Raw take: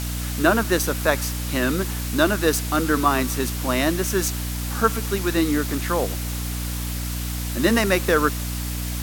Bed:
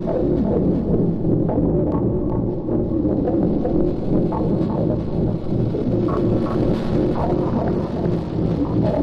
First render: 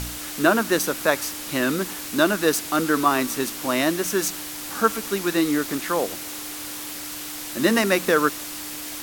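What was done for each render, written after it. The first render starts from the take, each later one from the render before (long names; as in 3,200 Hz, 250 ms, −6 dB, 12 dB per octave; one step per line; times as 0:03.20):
hum removal 60 Hz, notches 4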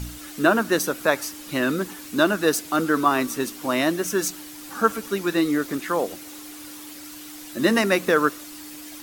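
broadband denoise 9 dB, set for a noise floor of −34 dBFS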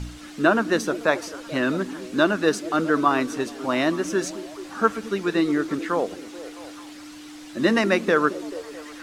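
high-frequency loss of the air 75 metres
echo through a band-pass that steps 217 ms, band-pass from 270 Hz, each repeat 0.7 octaves, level −10.5 dB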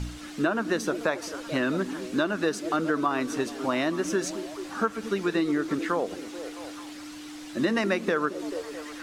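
downward compressor 5 to 1, threshold −22 dBFS, peak gain reduction 9.5 dB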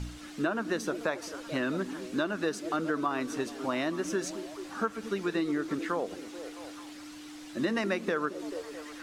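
level −4.5 dB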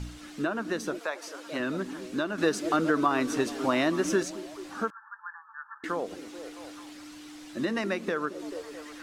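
0:00.98–0:01.58: high-pass filter 670 Hz → 230 Hz
0:02.38–0:04.23: clip gain +5.5 dB
0:04.90–0:05.84: linear-phase brick-wall band-pass 810–1,800 Hz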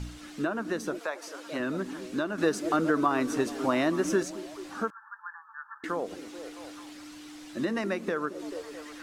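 dynamic equaliser 3,500 Hz, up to −4 dB, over −43 dBFS, Q 0.74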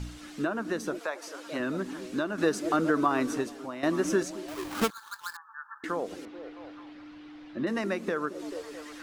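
0:03.29–0:03.83: fade out quadratic, to −13.5 dB
0:04.48–0:05.37: each half-wave held at its own peak
0:06.25–0:07.67: high-frequency loss of the air 320 metres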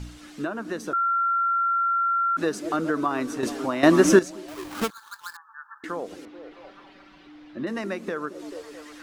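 0:00.93–0:02.37: beep over 1,370 Hz −20 dBFS
0:03.43–0:04.19: clip gain +11 dB
0:06.51–0:07.27: comb filter 5.2 ms, depth 85%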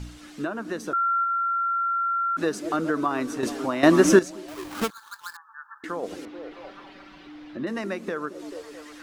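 0:01.18–0:02.37: flutter between parallel walls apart 10.2 metres, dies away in 0.3 s
0:06.03–0:07.57: clip gain +4 dB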